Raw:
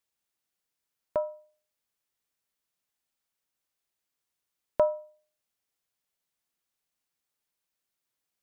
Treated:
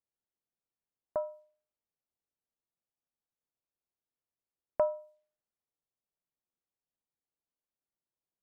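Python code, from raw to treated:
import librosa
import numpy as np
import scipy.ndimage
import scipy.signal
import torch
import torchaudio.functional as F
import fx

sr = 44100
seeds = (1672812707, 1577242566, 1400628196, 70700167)

y = fx.env_lowpass(x, sr, base_hz=790.0, full_db=-31.5)
y = y * 10.0 ** (-4.5 / 20.0)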